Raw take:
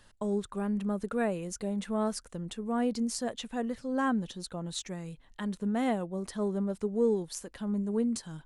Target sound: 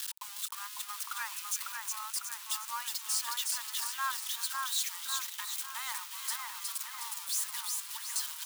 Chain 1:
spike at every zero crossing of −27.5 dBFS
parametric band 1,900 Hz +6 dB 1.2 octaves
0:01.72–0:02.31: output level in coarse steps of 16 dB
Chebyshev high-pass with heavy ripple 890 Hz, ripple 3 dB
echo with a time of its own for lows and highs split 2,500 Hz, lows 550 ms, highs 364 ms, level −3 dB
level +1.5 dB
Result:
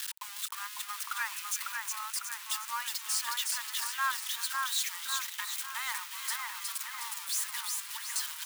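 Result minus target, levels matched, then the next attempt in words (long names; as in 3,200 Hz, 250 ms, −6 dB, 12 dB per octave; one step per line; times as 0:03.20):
2,000 Hz band +4.0 dB
spike at every zero crossing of −27.5 dBFS
0:01.72–0:02.31: output level in coarse steps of 16 dB
Chebyshev high-pass with heavy ripple 890 Hz, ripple 3 dB
echo with a time of its own for lows and highs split 2,500 Hz, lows 550 ms, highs 364 ms, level −3 dB
level +1.5 dB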